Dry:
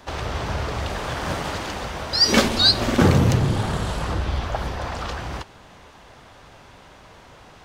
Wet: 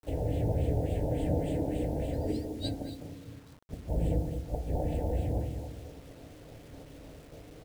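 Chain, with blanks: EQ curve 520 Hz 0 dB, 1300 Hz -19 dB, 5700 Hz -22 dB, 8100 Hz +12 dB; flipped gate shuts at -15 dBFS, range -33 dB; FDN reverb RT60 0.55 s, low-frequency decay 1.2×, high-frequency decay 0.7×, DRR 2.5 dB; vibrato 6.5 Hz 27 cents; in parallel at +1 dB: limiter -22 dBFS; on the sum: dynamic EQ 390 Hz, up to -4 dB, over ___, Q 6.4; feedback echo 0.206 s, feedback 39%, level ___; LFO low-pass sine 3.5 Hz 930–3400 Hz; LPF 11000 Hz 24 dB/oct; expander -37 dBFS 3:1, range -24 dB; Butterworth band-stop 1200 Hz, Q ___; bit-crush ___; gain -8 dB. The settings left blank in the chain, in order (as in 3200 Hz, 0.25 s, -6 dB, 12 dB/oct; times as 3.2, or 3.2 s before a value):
-46 dBFS, -7.5 dB, 0.93, 8-bit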